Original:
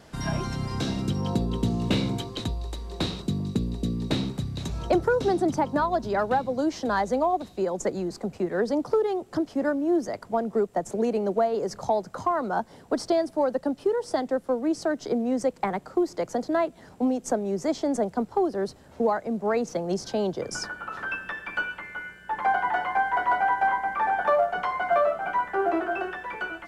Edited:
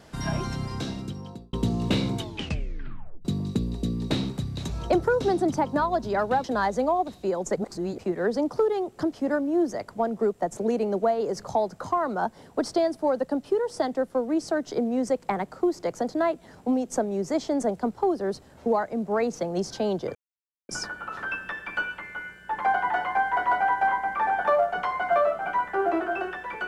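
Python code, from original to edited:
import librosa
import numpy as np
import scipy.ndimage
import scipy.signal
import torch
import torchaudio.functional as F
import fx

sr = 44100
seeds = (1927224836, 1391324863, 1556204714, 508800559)

y = fx.edit(x, sr, fx.fade_out_span(start_s=0.51, length_s=1.02),
    fx.tape_stop(start_s=2.17, length_s=1.08),
    fx.cut(start_s=6.44, length_s=0.34),
    fx.reverse_span(start_s=7.9, length_s=0.42),
    fx.insert_silence(at_s=20.49, length_s=0.54), tone=tone)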